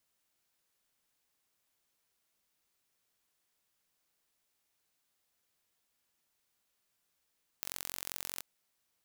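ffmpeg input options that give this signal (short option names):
-f lavfi -i "aevalsrc='0.316*eq(mod(n,978),0)*(0.5+0.5*eq(mod(n,1956),0))':d=0.78:s=44100"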